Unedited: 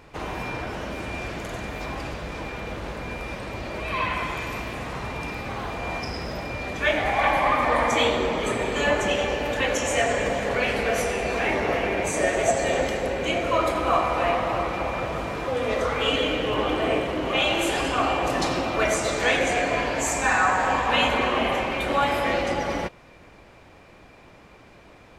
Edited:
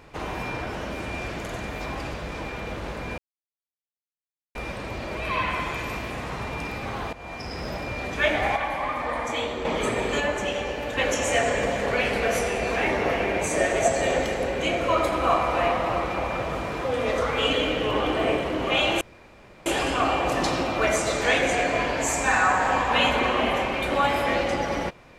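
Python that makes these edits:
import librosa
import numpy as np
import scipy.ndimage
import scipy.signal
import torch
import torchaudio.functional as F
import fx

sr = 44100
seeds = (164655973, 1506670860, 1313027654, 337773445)

y = fx.edit(x, sr, fx.insert_silence(at_s=3.18, length_s=1.37),
    fx.fade_in_from(start_s=5.76, length_s=0.55, floor_db=-14.5),
    fx.clip_gain(start_s=7.19, length_s=1.09, db=-7.0),
    fx.clip_gain(start_s=8.83, length_s=0.78, db=-4.0),
    fx.insert_room_tone(at_s=17.64, length_s=0.65), tone=tone)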